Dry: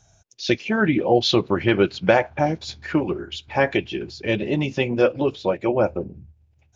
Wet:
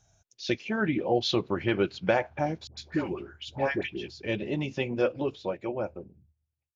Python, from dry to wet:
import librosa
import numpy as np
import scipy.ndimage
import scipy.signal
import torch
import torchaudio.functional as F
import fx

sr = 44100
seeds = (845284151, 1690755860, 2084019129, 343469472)

y = fx.fade_out_tail(x, sr, length_s=1.57)
y = fx.dispersion(y, sr, late='highs', ms=104.0, hz=940.0, at=(2.67, 4.08))
y = y * 10.0 ** (-8.0 / 20.0)